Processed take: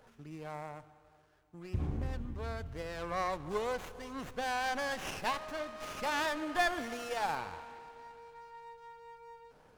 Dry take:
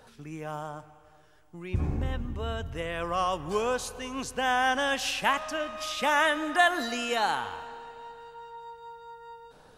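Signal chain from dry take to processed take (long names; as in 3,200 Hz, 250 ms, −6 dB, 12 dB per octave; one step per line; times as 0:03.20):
windowed peak hold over 9 samples
level −6 dB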